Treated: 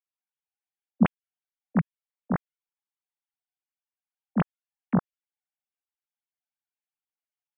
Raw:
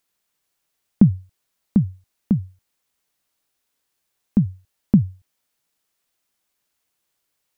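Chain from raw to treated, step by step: sine-wave speech; gain -8 dB

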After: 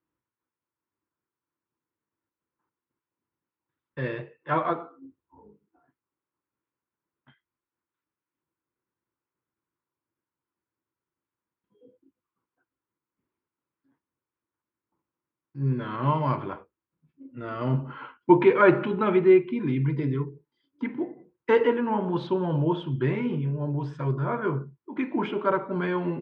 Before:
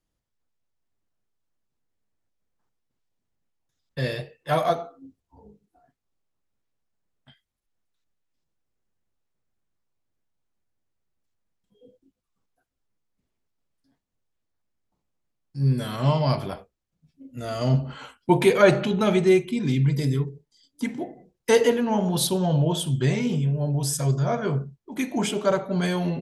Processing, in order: speaker cabinet 110–2600 Hz, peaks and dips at 190 Hz -4 dB, 330 Hz +9 dB, 690 Hz -8 dB, 1000 Hz +9 dB, 1400 Hz +5 dB; gain -3 dB

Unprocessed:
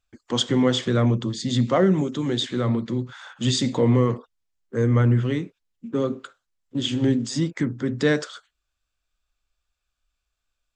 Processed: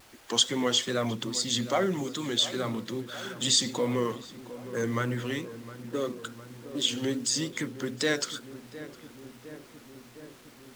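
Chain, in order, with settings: bin magnitudes rounded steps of 15 dB; RIAA curve recording; in parallel at -1 dB: compressor, threshold -33 dBFS, peak gain reduction 18.5 dB; on the sum: requantised 8-bit, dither triangular; vibrato 2.4 Hz 64 cents; backlash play -42.5 dBFS; on a send: darkening echo 0.71 s, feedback 76%, low-pass 1400 Hz, level -14 dB; on the sum: gain -5.5 dB

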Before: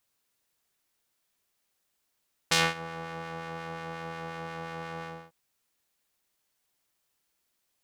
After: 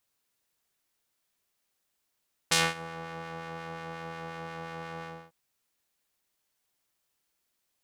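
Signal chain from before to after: dynamic EQ 9500 Hz, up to +6 dB, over -51 dBFS, Q 0.99; gain -1.5 dB

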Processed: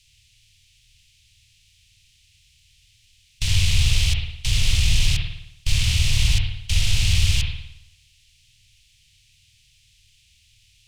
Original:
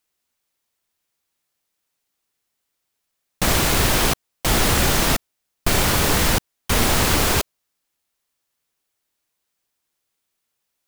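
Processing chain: per-bin compression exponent 0.6; Chebyshev band-stop 110–2600 Hz, order 3; bell 1300 Hz -13.5 dB 1 oct; soft clip -11.5 dBFS, distortion -19 dB; air absorption 83 m; on a send: reverb RT60 0.80 s, pre-delay 54 ms, DRR 1 dB; on the sum: gain +2 dB

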